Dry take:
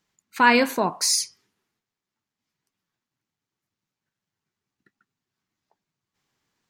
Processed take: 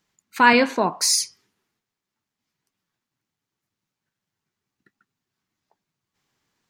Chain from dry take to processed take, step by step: 0.53–1.00 s: band-pass 130–5400 Hz; trim +2 dB

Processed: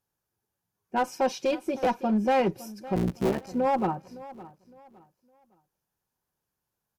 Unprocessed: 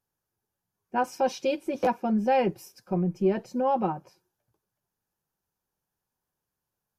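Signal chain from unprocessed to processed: 2.95–3.49 s: cycle switcher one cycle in 3, muted; one-sided clip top -22.5 dBFS, bottom -17.5 dBFS; on a send: feedback delay 561 ms, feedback 30%, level -18 dB; on the sum: trim +1 dB

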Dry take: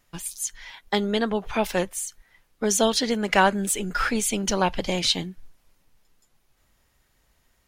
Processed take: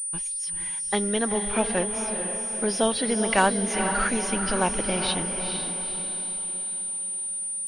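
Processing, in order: knee-point frequency compression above 3.6 kHz 1.5:1; echo that smears into a reverb 461 ms, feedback 49%, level -6.5 dB; class-D stage that switches slowly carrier 9.3 kHz; trim -2 dB

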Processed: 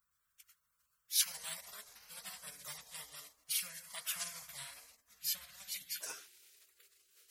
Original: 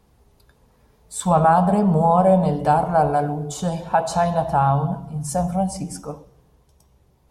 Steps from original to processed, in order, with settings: inverse Chebyshev high-pass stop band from 900 Hz, stop band 50 dB, from 6.00 s stop band from 280 Hz; spectral gate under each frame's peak -20 dB weak; trim +14 dB

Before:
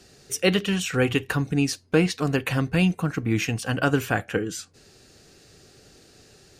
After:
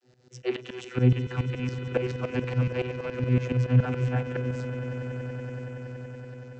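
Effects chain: rattle on loud lows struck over -27 dBFS, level -18 dBFS; vocoder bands 32, saw 125 Hz; tremolo saw up 7.1 Hz, depth 90%; on a send: echo with a slow build-up 94 ms, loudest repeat 8, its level -16.5 dB; on the sum: trim +2 dB

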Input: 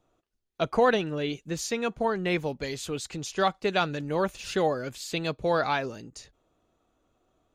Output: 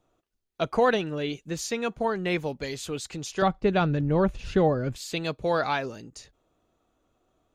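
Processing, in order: 3.42–4.96 s: RIAA curve playback

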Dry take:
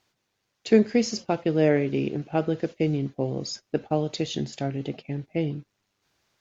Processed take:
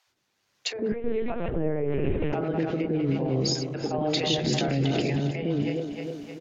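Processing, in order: backward echo that repeats 154 ms, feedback 71%, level -12.5 dB; low-pass that closes with the level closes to 1.1 kHz, closed at -18 dBFS; bass shelf 75 Hz -8 dB; level rider gain up to 14 dB; peak limiter -17.5 dBFS, peak gain reduction 16 dB; three bands offset in time highs, lows, mids 70/100 ms, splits 170/550 Hz; 0.92–2.33 s: LPC vocoder at 8 kHz pitch kept; 3.94–5.20 s: level flattener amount 50%; trim +1.5 dB

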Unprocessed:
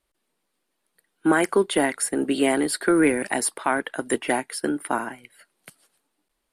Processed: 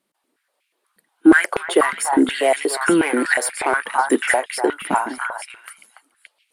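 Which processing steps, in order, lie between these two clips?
in parallel at -4 dB: saturation -22.5 dBFS, distortion -8 dB; on the sum: repeats whose band climbs or falls 286 ms, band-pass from 1.1 kHz, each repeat 1.4 oct, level 0 dB; step-sequenced high-pass 8.3 Hz 200–2400 Hz; trim -2 dB

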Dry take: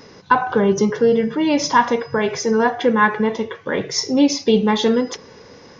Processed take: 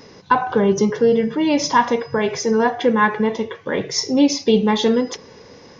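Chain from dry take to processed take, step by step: peaking EQ 1.4 kHz -3.5 dB 0.52 oct

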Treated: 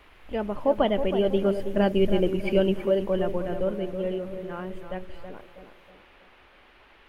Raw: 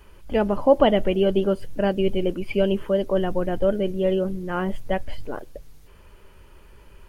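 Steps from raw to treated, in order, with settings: Doppler pass-by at 2.15 s, 7 m/s, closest 5.5 m; band noise 230–2900 Hz -57 dBFS; on a send: tape echo 322 ms, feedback 52%, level -7 dB, low-pass 1.4 kHz

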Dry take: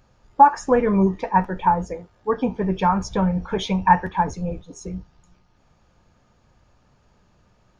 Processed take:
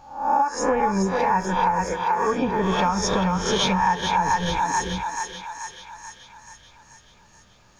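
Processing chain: reverse spectral sustain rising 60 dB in 0.54 s; thinning echo 434 ms, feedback 61%, high-pass 690 Hz, level -4 dB; compression 16:1, threshold -18 dBFS, peak gain reduction 13.5 dB; treble shelf 2.2 kHz +8.5 dB

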